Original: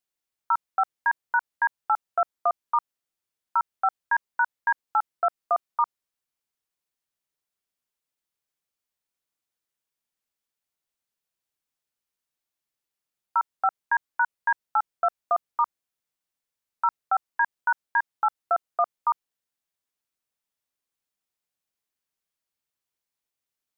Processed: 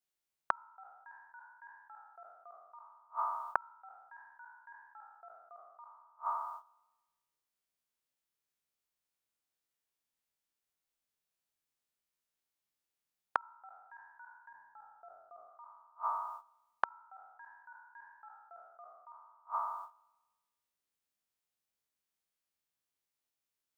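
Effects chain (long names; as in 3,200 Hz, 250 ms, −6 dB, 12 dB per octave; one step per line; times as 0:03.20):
peak hold with a decay on every bin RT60 1.25 s
noise gate −54 dBFS, range −15 dB
0:14.49–0:15.49: tilt shelving filter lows +7.5 dB, about 810 Hz
gate with flip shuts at −26 dBFS, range −41 dB
level +9 dB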